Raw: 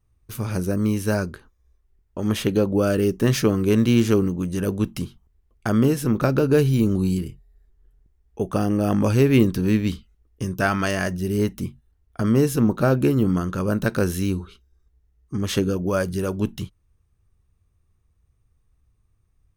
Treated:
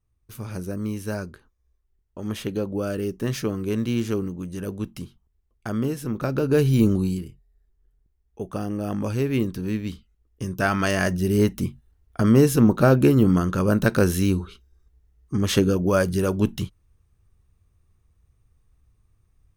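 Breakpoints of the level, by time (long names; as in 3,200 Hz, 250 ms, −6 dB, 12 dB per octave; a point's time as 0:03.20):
0:06.17 −7 dB
0:06.85 +2 dB
0:07.28 −7 dB
0:09.93 −7 dB
0:11.10 +2.5 dB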